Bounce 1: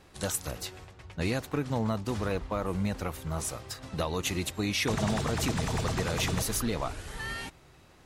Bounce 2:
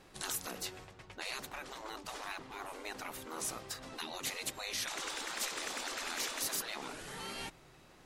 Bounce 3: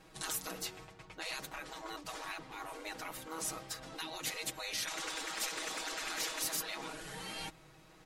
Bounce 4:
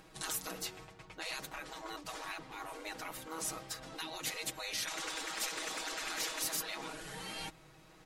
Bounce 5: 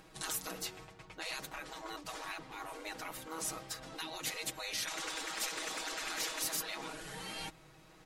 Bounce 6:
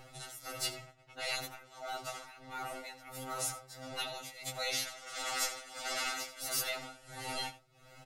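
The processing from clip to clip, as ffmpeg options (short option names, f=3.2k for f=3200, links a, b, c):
-af "afftfilt=real='re*lt(hypot(re,im),0.0562)':imag='im*lt(hypot(re,im),0.0562)':win_size=1024:overlap=0.75,equalizer=f=73:t=o:w=1:g=-10.5,volume=-1.5dB"
-af "aecho=1:1:6.3:0.77,volume=-2dB"
-af "acompressor=mode=upward:threshold=-57dB:ratio=2.5"
-af anull
-af "tremolo=f=1.5:d=0.86,aecho=1:1:83:0.15,afftfilt=real='re*2.45*eq(mod(b,6),0)':imag='im*2.45*eq(mod(b,6),0)':win_size=2048:overlap=0.75,volume=7dB"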